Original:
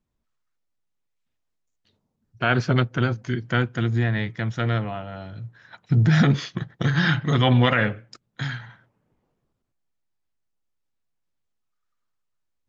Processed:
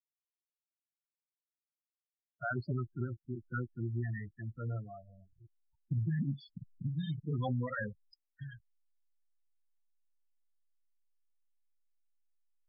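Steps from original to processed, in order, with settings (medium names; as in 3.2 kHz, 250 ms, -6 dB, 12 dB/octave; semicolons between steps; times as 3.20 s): expander on every frequency bin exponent 1.5; 6.19–7.23 s: elliptic band-stop 290–2200 Hz, stop band 50 dB; hysteresis with a dead band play -38.5 dBFS; loudest bins only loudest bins 8; compression, threshold -22 dBFS, peak gain reduction 7 dB; trim -8.5 dB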